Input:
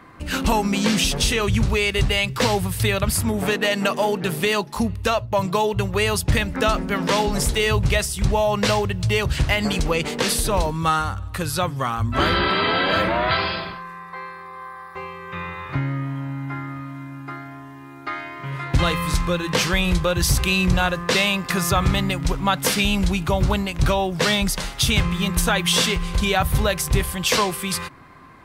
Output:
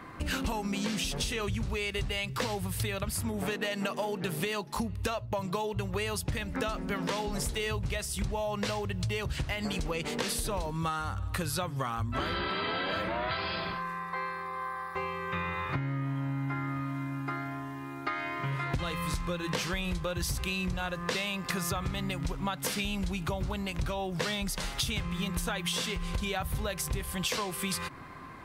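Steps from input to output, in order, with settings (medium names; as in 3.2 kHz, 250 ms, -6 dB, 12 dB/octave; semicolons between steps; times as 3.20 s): compression 12:1, threshold -29 dBFS, peak gain reduction 17 dB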